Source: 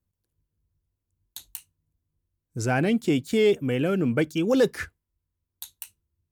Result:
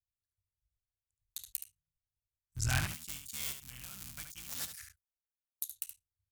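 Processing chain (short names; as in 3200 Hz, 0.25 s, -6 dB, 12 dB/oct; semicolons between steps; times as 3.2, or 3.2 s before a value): cycle switcher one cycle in 3, muted; 2.87–5.69 pre-emphasis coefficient 0.8; spectral noise reduction 10 dB; EQ curve 100 Hz 0 dB, 450 Hz -28 dB, 690 Hz -16 dB, 1200 Hz -7 dB, 6900 Hz +3 dB; echo 72 ms -6 dB; upward expander 1.5:1, over -40 dBFS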